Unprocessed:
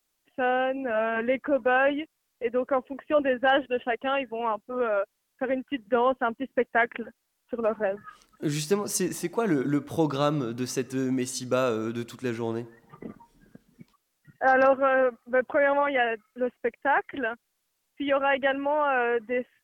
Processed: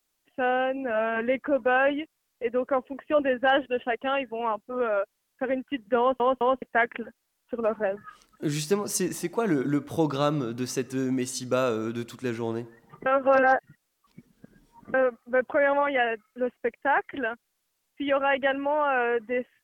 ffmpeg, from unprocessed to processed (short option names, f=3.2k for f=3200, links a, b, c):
-filter_complex "[0:a]asplit=6[a][b][c][d][e][f];[a]atrim=end=6.202[g];[b]atrim=start=5.988:end=6.202[h];[c]atrim=start=5.988:end=6.202[i];[d]atrim=start=6.618:end=13.062[j];[e]atrim=start=13.058:end=14.942,asetpts=PTS-STARTPTS,areverse[k];[f]atrim=start=14.938[l];[g][h]acrossfade=d=0.004:c1=hsin:c2=hsin[m];[m][i]acrossfade=d=0.004:c1=hsin:c2=hsin[n];[n][j]acrossfade=d=0.004:c1=hsin:c2=hsin[o];[o][k]acrossfade=d=0.004:c1=hsin:c2=hsin[p];[p][l]acrossfade=d=0.004:c1=hsin:c2=hsin"